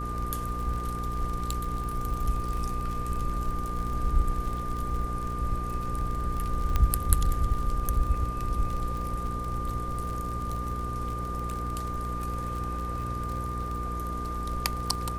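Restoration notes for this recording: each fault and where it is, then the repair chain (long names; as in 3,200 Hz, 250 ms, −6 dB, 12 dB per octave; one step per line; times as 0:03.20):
surface crackle 37 per second −32 dBFS
mains hum 60 Hz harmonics 8 −34 dBFS
whistle 1,200 Hz −34 dBFS
0:06.76: click −12 dBFS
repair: click removal
notch filter 1,200 Hz, Q 30
hum removal 60 Hz, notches 8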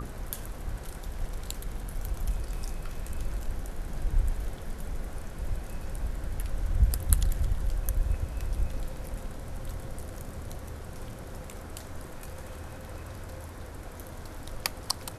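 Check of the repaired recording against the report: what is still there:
none of them is left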